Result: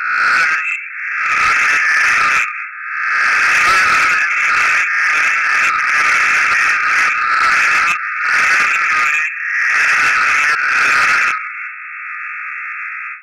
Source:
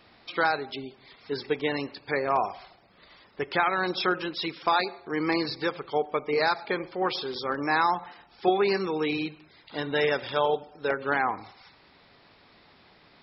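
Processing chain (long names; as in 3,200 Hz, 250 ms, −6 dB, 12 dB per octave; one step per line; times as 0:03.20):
peak hold with a rise ahead of every peak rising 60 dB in 1.34 s
0:08.91–0:09.80: parametric band 1,600 Hz −6 dB 0.48 octaves
automatic gain control gain up to 14.5 dB
sine wavefolder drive 17 dB, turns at −0.5 dBFS
0:03.53–0:04.04: leveller curve on the samples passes 5
brick-wall band-pass 1,200–2,700 Hz
soft clipping −8 dBFS, distortion −12 dB
every ending faded ahead of time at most 160 dB per second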